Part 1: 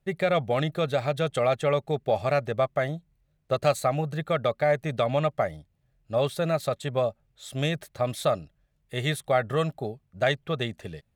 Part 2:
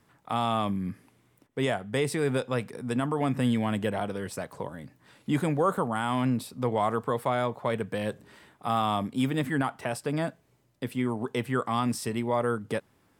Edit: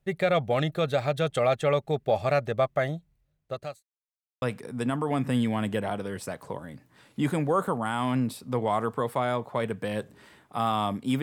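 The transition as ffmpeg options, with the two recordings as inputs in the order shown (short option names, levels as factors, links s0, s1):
-filter_complex "[0:a]apad=whole_dur=11.22,atrim=end=11.22,asplit=2[s0][s1];[s0]atrim=end=3.83,asetpts=PTS-STARTPTS,afade=t=out:st=3.04:d=0.79[s2];[s1]atrim=start=3.83:end=4.42,asetpts=PTS-STARTPTS,volume=0[s3];[1:a]atrim=start=2.52:end=9.32,asetpts=PTS-STARTPTS,afade=t=in:d=0.004:c=hsin[s4];[s2][s3][s4]concat=n=3:v=0:a=1"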